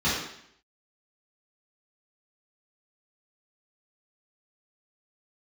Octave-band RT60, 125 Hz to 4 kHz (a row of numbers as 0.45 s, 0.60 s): 0.65 s, 0.70 s, 0.70 s, 0.70 s, 0.70 s, 0.70 s